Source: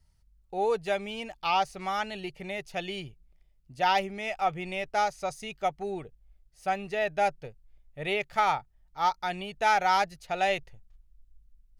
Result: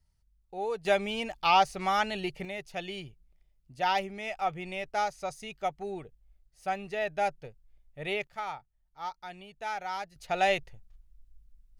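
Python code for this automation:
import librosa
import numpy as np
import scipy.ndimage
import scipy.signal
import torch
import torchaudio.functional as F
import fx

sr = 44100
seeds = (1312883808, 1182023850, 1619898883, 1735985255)

y = fx.gain(x, sr, db=fx.steps((0.0, -6.0), (0.85, 3.5), (2.45, -3.0), (8.27, -11.5), (10.16, 1.0)))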